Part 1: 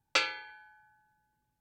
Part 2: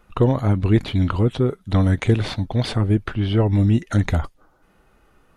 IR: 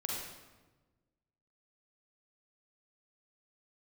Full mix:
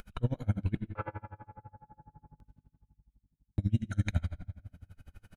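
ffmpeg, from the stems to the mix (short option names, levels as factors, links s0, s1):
-filter_complex "[0:a]lowpass=f=1200:w=0.5412,lowpass=f=1200:w=1.3066,aeval=exprs='val(0)+0.000316*(sin(2*PI*50*n/s)+sin(2*PI*2*50*n/s)/2+sin(2*PI*3*50*n/s)/3+sin(2*PI*4*50*n/s)/4+sin(2*PI*5*50*n/s)/5)':c=same,adelay=800,volume=1.19,asplit=2[s0][s1];[s1]volume=0.631[s2];[1:a]equalizer=f=830:t=o:w=1:g=-11,aecho=1:1:1.3:0.64,volume=0.237,asplit=3[s3][s4][s5];[s3]atrim=end=0.75,asetpts=PTS-STARTPTS,afade=t=out:st=0.746:d=0.004:c=hsin[s6];[s4]atrim=start=0.75:end=3.58,asetpts=PTS-STARTPTS,volume=0[s7];[s5]atrim=start=3.58,asetpts=PTS-STARTPTS,afade=t=in:d=0.004:c=hsin[s8];[s6][s7][s8]concat=n=3:v=0:a=1,asplit=2[s9][s10];[s10]volume=0.631[s11];[2:a]atrim=start_sample=2205[s12];[s2][s11]amix=inputs=2:normalize=0[s13];[s13][s12]afir=irnorm=-1:irlink=0[s14];[s0][s9][s14]amix=inputs=3:normalize=0,acompressor=mode=upward:threshold=0.02:ratio=2.5,aeval=exprs='val(0)*pow(10,-30*(0.5-0.5*cos(2*PI*12*n/s))/20)':c=same"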